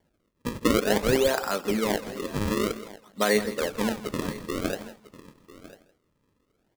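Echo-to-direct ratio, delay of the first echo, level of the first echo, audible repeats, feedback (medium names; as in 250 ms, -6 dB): -13.5 dB, 163 ms, -15.5 dB, 3, no regular repeats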